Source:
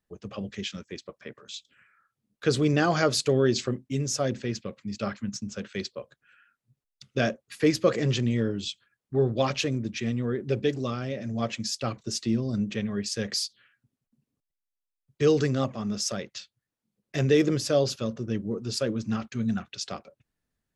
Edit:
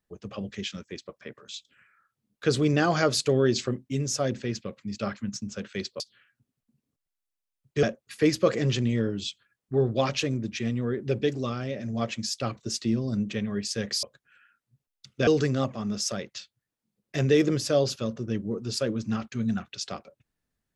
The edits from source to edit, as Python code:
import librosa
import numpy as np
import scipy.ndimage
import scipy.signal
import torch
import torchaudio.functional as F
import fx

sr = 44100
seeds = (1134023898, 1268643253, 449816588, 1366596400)

y = fx.edit(x, sr, fx.swap(start_s=6.0, length_s=1.24, other_s=13.44, other_length_s=1.83), tone=tone)